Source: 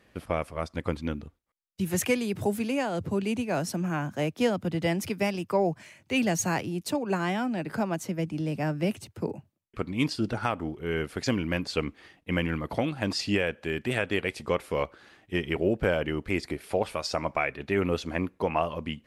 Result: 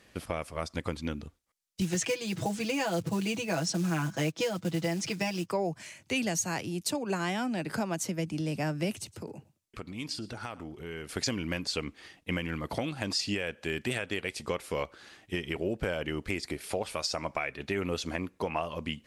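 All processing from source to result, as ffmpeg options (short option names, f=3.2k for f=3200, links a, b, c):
-filter_complex "[0:a]asettb=1/sr,asplit=3[a][b][c];[a]atrim=end=1.814[d];[b]atrim=start=1.81:end=5.51,asetpts=PTS-STARTPTS,afade=t=in:d=0.004:c=qsin,afade=t=out:st=3.696:d=0.004:c=qsin,lowpass=f=7.4k:w=0.5412,lowpass=f=7.4k:w=1.3066,aecho=1:1:6.1:0.94,atrim=end_sample=163170,acrusher=bits=6:mode=log:mix=0:aa=0.000001[e];[c]atrim=start=5.506[f];[d][e]acrossfade=d=0.004:c1=hsin:c2=qsin[g];[g][f]acrossfade=d=0.004:c1=qsin:c2=hsin,asettb=1/sr,asplit=3[h][i][j];[h]atrim=end=8.954[k];[i]atrim=start=8.95:end=11.09,asetpts=PTS-STARTPTS,afade=t=in:d=0.004:c=qsin,afade=t=out:st=2.136:d=0.004:c=qsin,acompressor=threshold=-41dB:ratio=2.5:attack=3.2:release=140:knee=1:detection=peak,aecho=1:1:114:0.0891,atrim=end_sample=94374[l];[j]atrim=start=11.086[m];[k][l]acrossfade=d=0.004:c1=hsin:c2=qsin[n];[n][m]acrossfade=d=0.004:c1=qsin:c2=hsin,equalizer=f=7k:t=o:w=2.2:g=9,alimiter=limit=-15dB:level=0:latency=1:release=408,acompressor=threshold=-30dB:ratio=2"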